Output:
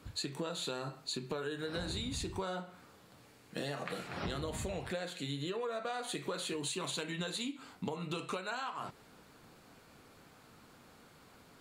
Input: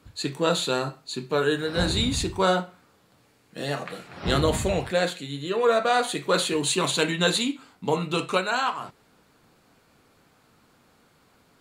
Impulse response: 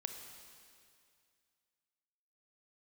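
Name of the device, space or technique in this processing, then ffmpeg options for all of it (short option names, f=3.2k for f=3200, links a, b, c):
serial compression, peaks first: -af "acompressor=threshold=-32dB:ratio=6,acompressor=threshold=-37dB:ratio=3,volume=1dB"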